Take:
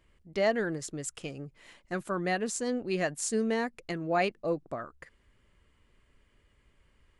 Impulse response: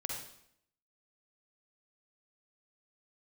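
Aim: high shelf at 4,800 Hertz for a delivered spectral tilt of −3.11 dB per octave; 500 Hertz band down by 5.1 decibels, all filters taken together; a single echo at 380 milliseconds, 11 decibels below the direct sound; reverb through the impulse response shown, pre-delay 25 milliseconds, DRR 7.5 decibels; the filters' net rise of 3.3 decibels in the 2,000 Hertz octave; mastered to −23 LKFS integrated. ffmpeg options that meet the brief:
-filter_complex "[0:a]equalizer=frequency=500:width_type=o:gain=-7,equalizer=frequency=2000:width_type=o:gain=3.5,highshelf=frequency=4800:gain=4.5,aecho=1:1:380:0.282,asplit=2[link_01][link_02];[1:a]atrim=start_sample=2205,adelay=25[link_03];[link_02][link_03]afir=irnorm=-1:irlink=0,volume=-8.5dB[link_04];[link_01][link_04]amix=inputs=2:normalize=0,volume=9dB"

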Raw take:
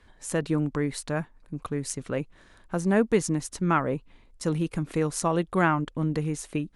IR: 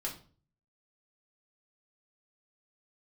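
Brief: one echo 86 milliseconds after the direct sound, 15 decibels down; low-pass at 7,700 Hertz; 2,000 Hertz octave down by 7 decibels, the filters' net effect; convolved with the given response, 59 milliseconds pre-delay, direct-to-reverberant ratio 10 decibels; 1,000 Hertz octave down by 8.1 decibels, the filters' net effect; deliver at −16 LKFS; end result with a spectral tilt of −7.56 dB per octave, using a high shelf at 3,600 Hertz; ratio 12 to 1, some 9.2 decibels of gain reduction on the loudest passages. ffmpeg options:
-filter_complex "[0:a]lowpass=7700,equalizer=frequency=1000:width_type=o:gain=-9,equalizer=frequency=2000:width_type=o:gain=-3.5,highshelf=frequency=3600:gain=-8,acompressor=threshold=-26dB:ratio=12,aecho=1:1:86:0.178,asplit=2[link_01][link_02];[1:a]atrim=start_sample=2205,adelay=59[link_03];[link_02][link_03]afir=irnorm=-1:irlink=0,volume=-11.5dB[link_04];[link_01][link_04]amix=inputs=2:normalize=0,volume=17.5dB"

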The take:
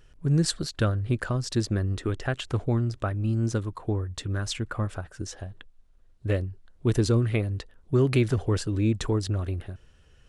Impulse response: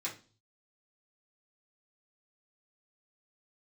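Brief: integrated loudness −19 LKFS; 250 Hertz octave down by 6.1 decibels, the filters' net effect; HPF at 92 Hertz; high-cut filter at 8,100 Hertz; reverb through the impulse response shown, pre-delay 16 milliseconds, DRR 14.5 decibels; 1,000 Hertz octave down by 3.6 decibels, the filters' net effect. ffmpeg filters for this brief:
-filter_complex "[0:a]highpass=92,lowpass=8100,equalizer=frequency=250:width_type=o:gain=-8.5,equalizer=frequency=1000:width_type=o:gain=-4.5,asplit=2[link_01][link_02];[1:a]atrim=start_sample=2205,adelay=16[link_03];[link_02][link_03]afir=irnorm=-1:irlink=0,volume=-16.5dB[link_04];[link_01][link_04]amix=inputs=2:normalize=0,volume=12dB"

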